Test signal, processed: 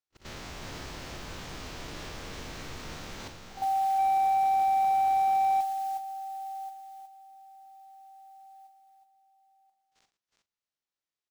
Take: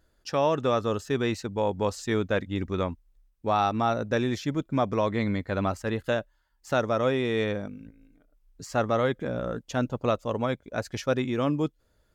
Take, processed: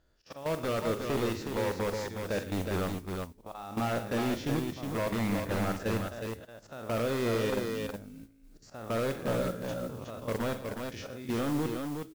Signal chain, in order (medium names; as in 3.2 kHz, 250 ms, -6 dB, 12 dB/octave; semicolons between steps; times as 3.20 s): spectral blur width 81 ms; low-pass 6.7 kHz 24 dB/octave; de-hum 105.3 Hz, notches 4; in parallel at +1.5 dB: compression 12:1, threshold -34 dBFS; on the sum: slow attack 272 ms; level held to a coarse grid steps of 14 dB; modulation noise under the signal 19 dB; wavefolder -24.5 dBFS; on a send: multi-tap echo 44/115/355/366 ms -12.5/-15.5/-17.5/-5.5 dB; on the sum: slew-rate limiter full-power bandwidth 58 Hz